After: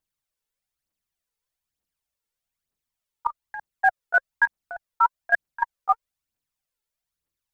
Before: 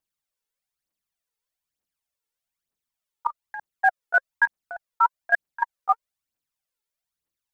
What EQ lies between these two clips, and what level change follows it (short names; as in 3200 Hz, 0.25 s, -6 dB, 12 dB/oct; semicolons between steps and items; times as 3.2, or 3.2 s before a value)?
low shelf 120 Hz +8.5 dB; 0.0 dB